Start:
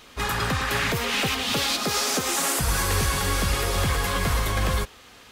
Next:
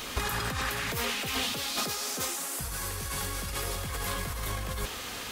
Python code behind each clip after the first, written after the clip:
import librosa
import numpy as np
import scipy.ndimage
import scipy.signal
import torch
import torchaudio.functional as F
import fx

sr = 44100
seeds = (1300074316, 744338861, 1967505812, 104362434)

y = fx.high_shelf(x, sr, hz=7500.0, db=8.0)
y = fx.over_compress(y, sr, threshold_db=-33.0, ratio=-1.0)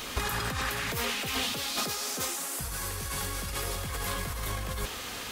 y = x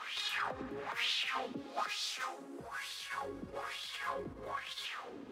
y = np.where(np.abs(x) >= 10.0 ** (-43.0 / 20.0), x, 0.0)
y = fx.wah_lfo(y, sr, hz=1.1, low_hz=280.0, high_hz=3800.0, q=3.2)
y = F.gain(torch.from_numpy(y), 4.0).numpy()